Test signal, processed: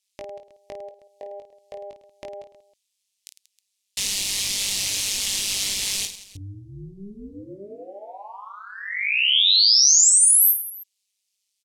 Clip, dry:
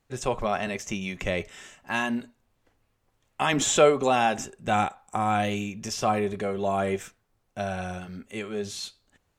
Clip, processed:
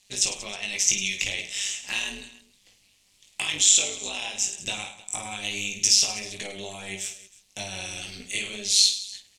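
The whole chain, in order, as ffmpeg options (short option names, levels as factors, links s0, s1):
-filter_complex "[0:a]tremolo=f=200:d=0.824,lowpass=8900,acompressor=threshold=0.0126:ratio=12,aexciter=amount=14:drive=3.2:freq=2200,asplit=2[s0][s1];[s1]aecho=0:1:20|52|103.2|185.1|316.2:0.631|0.398|0.251|0.158|0.1[s2];[s0][s2]amix=inputs=2:normalize=0"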